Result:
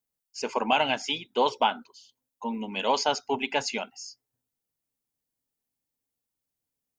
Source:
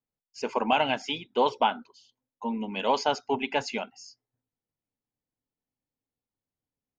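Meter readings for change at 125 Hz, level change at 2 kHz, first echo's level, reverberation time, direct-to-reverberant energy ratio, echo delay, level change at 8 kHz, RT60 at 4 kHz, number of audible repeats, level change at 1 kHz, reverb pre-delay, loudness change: −2.0 dB, +1.5 dB, no echo audible, no reverb audible, no reverb audible, no echo audible, can't be measured, no reverb audible, no echo audible, 0.0 dB, no reverb audible, +0.5 dB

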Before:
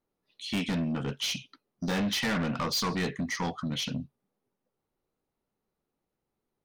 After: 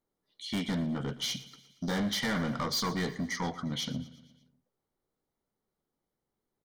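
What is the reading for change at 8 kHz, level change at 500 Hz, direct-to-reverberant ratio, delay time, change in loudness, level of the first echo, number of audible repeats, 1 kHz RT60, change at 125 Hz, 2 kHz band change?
−2.0 dB, −2.0 dB, no reverb audible, 117 ms, −2.0 dB, −18.0 dB, 4, no reverb audible, −2.0 dB, −3.0 dB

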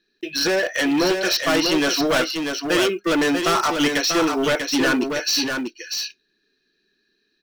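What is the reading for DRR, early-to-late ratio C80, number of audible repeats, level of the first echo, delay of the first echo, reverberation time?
no reverb audible, no reverb audible, 1, −5.5 dB, 642 ms, no reverb audible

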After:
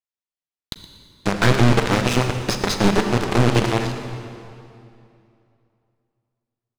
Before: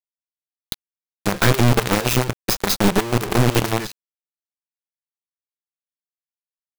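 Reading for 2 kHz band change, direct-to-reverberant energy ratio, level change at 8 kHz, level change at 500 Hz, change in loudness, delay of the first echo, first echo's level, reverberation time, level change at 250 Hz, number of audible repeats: +0.5 dB, 6.0 dB, −4.5 dB, +0.5 dB, −0.5 dB, 119 ms, −16.5 dB, 2.6 s, +1.0 dB, 1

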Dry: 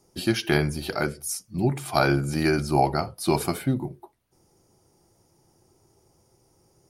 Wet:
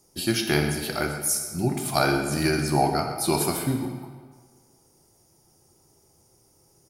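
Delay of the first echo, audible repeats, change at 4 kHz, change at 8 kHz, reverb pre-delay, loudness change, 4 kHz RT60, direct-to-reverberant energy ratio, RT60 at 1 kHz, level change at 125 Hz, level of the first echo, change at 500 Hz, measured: 122 ms, 1, +3.0 dB, +6.5 dB, 18 ms, +0.5 dB, 1.1 s, 4.0 dB, 1.6 s, −1.5 dB, −13.0 dB, −0.5 dB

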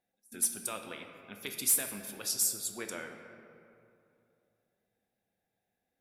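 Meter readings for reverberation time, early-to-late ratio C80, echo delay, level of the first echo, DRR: 2.6 s, 7.0 dB, no echo audible, no echo audible, 4.0 dB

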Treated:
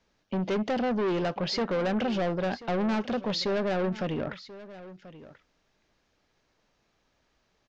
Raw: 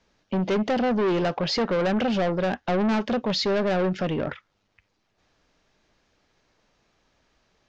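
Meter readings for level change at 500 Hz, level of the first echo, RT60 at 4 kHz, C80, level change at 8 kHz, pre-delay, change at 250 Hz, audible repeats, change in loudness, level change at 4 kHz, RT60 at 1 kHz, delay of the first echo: −4.5 dB, −17.0 dB, no reverb audible, no reverb audible, can't be measured, no reverb audible, −4.5 dB, 1, −4.5 dB, −4.5 dB, no reverb audible, 1,035 ms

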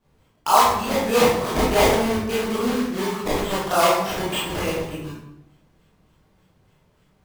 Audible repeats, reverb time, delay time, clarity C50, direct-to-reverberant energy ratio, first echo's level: no echo audible, 0.80 s, no echo audible, −0.5 dB, −8.5 dB, no echo audible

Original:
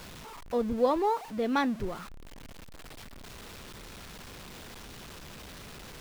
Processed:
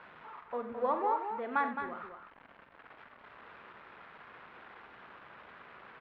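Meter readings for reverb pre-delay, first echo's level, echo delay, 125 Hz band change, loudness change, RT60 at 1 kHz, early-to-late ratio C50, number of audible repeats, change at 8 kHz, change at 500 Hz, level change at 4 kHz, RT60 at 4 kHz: no reverb audible, −10.5 dB, 45 ms, −17.5 dB, −5.0 dB, no reverb audible, no reverb audible, 4, below −30 dB, −7.5 dB, −16.0 dB, no reverb audible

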